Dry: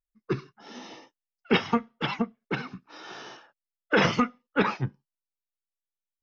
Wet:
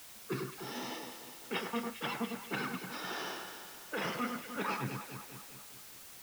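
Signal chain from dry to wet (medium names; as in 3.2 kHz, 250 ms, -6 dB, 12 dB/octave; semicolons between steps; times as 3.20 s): Bessel high-pass 220 Hz, order 8; reverse; compression 12:1, threshold -36 dBFS, peak gain reduction 19 dB; reverse; echo whose repeats swap between lows and highs 101 ms, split 2 kHz, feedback 75%, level -5 dB; added noise white -54 dBFS; trim +2 dB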